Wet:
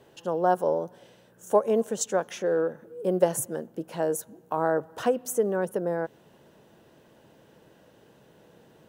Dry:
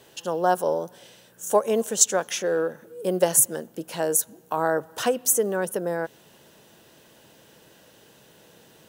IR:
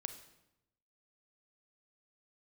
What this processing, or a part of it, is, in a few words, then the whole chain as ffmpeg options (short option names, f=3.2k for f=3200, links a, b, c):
through cloth: -af "highshelf=f=2.1k:g=-14"